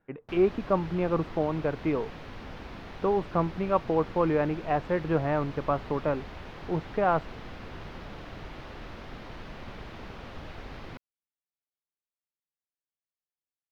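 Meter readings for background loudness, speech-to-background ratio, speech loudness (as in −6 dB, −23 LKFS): −43.5 LKFS, 15.0 dB, −28.5 LKFS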